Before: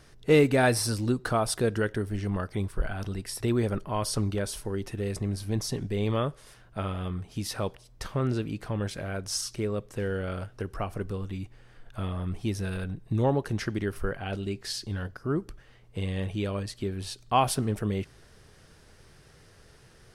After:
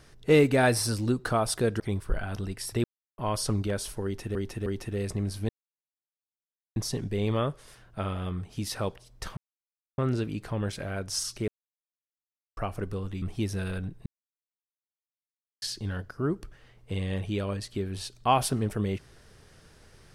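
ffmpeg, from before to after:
ffmpeg -i in.wav -filter_complex "[0:a]asplit=13[link_01][link_02][link_03][link_04][link_05][link_06][link_07][link_08][link_09][link_10][link_11][link_12][link_13];[link_01]atrim=end=1.802[link_14];[link_02]atrim=start=2.478:end=3.52,asetpts=PTS-STARTPTS,afade=type=out:start_time=1.038:duration=0.004:curve=hsin[link_15];[link_03]atrim=start=3.52:end=3.86,asetpts=PTS-STARTPTS,volume=0[link_16];[link_04]atrim=start=3.86:end=5.032,asetpts=PTS-STARTPTS,afade=type=in:duration=0.004:curve=hsin[link_17];[link_05]atrim=start=4.718:end=5.032[link_18];[link_06]atrim=start=4.718:end=5.55,asetpts=PTS-STARTPTS,afade=type=out:start_time=0.828:duration=0.004:curve=hsin,apad=pad_dur=1.27[link_19];[link_07]atrim=start=5.55:end=8.16,asetpts=PTS-STARTPTS,afade=type=in:duration=0.004:curve=hsin,afade=type=out:start_time=2.606:duration=0.004:curve=hsin,apad=pad_dur=0.61[link_20];[link_08]atrim=start=8.16:end=9.66,asetpts=PTS-STARTPTS,afade=type=in:duration=0.004:curve=hsin,afade=type=out:start_time=1.496:duration=0.004:curve=hsin[link_21];[link_09]atrim=start=9.66:end=10.75,asetpts=PTS-STARTPTS,volume=0[link_22];[link_10]atrim=start=10.75:end=11.402,asetpts=PTS-STARTPTS,afade=type=in:duration=0.004:curve=hsin[link_23];[link_11]atrim=start=12.278:end=13.12,asetpts=PTS-STARTPTS,afade=type=out:start_time=0.838:duration=0.004:curve=hsin[link_24];[link_12]atrim=start=13.12:end=14.68,asetpts=PTS-STARTPTS,volume=0[link_25];[link_13]atrim=start=14.68,asetpts=PTS-STARTPTS,afade=type=in:duration=0.004:curve=hsin[link_26];[link_15][link_16][link_17]concat=n=3:v=0:a=1[link_27];[link_14][link_27]acrossfade=duration=0.004:curve1=hsin:curve2=hsin[link_28];[link_28][link_18]acrossfade=duration=0.004:curve1=hsin:curve2=hsin[link_29];[link_19][link_20][link_21][link_22][link_23]concat=n=5:v=0:a=1[link_30];[link_29][link_30]acrossfade=duration=0.004:curve1=hsin:curve2=hsin[link_31];[link_24][link_25][link_26]concat=n=3:v=0:a=1[link_32];[link_31][link_32]acrossfade=duration=0.004:curve1=hsin:curve2=hsin" out.wav

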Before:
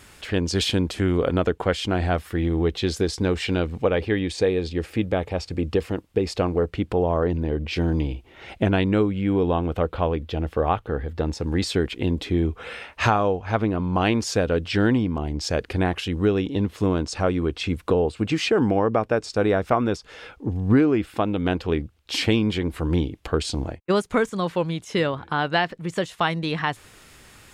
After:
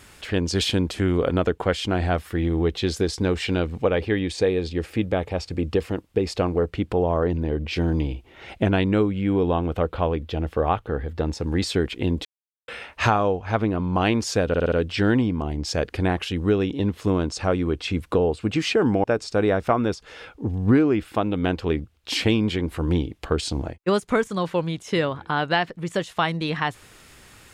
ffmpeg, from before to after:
ffmpeg -i in.wav -filter_complex "[0:a]asplit=8[link_01][link_02][link_03][link_04][link_05][link_06][link_07][link_08];[link_01]atrim=end=12.25,asetpts=PTS-STARTPTS,afade=type=out:start_time=12.246:duration=0.004:curve=hsin[link_09];[link_02]atrim=start=12.25:end=12.68,asetpts=PTS-STARTPTS,volume=0[link_10];[link_03]atrim=start=12.68:end=14.542,asetpts=PTS-STARTPTS,afade=type=in:duration=0.004:curve=hsin[link_11];[link_04]atrim=start=14.478:end=14.542[link_12];[link_05]atrim=start=14.478:end=14.542[link_13];[link_06]atrim=start=14.478:end=14.542[link_14];[link_07]atrim=start=14.478:end=18.802[link_15];[link_08]atrim=start=19.058[link_16];[link_09][link_10][link_11]concat=n=3:v=0:a=1[link_17];[link_17][link_12]acrossfade=duration=0.004:curve1=hsin:curve2=hsin[link_18];[link_18][link_13]acrossfade=duration=0.004:curve1=hsin:curve2=hsin[link_19];[link_19][link_14]acrossfade=duration=0.004:curve1=hsin:curve2=hsin[link_20];[link_20][link_15]acrossfade=duration=0.004:curve1=hsin:curve2=hsin[link_21];[link_21][link_16]acrossfade=duration=0.004:curve1=hsin:curve2=hsin" out.wav

